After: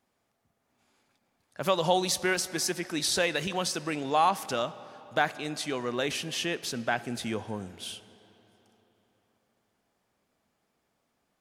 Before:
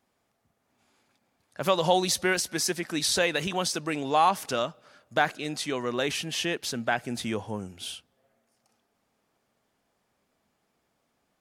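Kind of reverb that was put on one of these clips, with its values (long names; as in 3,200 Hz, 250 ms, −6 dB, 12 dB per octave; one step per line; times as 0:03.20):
comb and all-pass reverb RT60 3.8 s, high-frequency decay 0.7×, pre-delay 5 ms, DRR 16.5 dB
level −2 dB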